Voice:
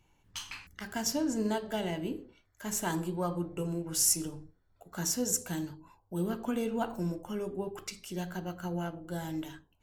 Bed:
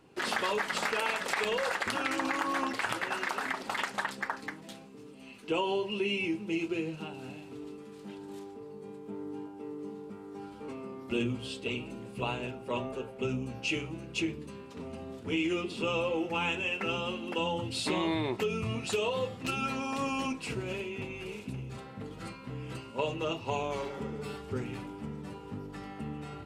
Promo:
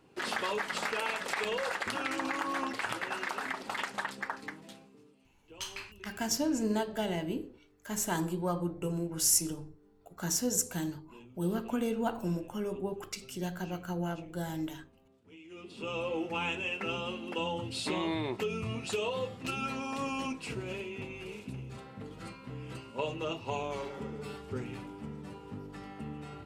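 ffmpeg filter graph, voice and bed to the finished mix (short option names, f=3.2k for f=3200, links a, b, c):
-filter_complex "[0:a]adelay=5250,volume=0.5dB[a];[1:a]volume=18dB,afade=t=out:st=4.57:d=0.73:silence=0.0944061,afade=t=in:st=15.47:d=0.69:silence=0.0944061[b];[a][b]amix=inputs=2:normalize=0"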